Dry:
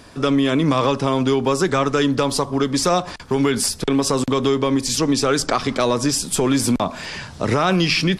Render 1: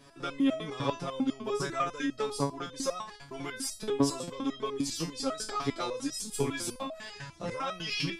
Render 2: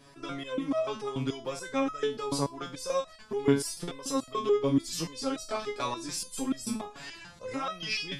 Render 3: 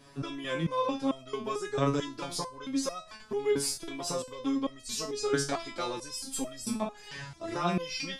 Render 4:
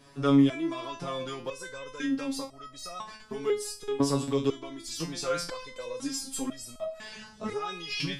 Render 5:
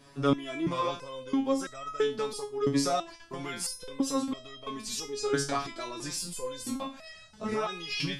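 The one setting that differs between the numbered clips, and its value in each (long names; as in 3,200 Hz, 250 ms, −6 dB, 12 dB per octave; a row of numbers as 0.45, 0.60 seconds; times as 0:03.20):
step-sequenced resonator, speed: 10, 6.9, 4.5, 2, 3 Hertz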